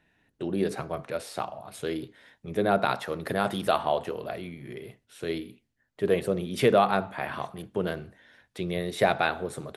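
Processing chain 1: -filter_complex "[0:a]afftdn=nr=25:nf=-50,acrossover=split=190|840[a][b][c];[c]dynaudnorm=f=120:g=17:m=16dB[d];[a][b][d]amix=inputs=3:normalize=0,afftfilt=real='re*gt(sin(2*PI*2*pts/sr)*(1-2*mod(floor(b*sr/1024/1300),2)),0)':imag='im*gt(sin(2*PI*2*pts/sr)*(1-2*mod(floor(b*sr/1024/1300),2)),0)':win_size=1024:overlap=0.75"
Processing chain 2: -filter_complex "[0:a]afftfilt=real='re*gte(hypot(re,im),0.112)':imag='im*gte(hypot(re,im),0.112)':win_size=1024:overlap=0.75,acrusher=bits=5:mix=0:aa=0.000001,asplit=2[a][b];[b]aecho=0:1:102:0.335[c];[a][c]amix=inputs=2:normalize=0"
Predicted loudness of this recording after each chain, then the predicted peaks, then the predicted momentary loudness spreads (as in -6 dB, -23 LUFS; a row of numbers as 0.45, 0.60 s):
-26.5, -29.0 LUFS; -6.0, -9.5 dBFS; 17, 14 LU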